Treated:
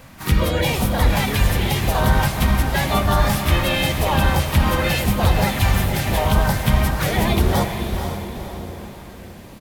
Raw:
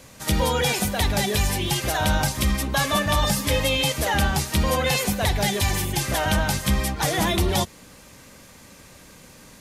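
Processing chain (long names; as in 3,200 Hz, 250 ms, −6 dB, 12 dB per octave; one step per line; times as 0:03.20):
pitch-shifted copies added −7 semitones −6 dB, +3 semitones −7 dB, +4 semitones −16 dB
far-end echo of a speakerphone 110 ms, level −14 dB
auto-filter notch saw up 0.91 Hz 350–3,200 Hz
parametric band 7,000 Hz −12 dB 2 octaves
on a send: feedback delay with all-pass diffusion 485 ms, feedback 42%, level −6.5 dB
on the sum: dynamic equaliser 350 Hz, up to −5 dB, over −35 dBFS, Q 0.75
level +5 dB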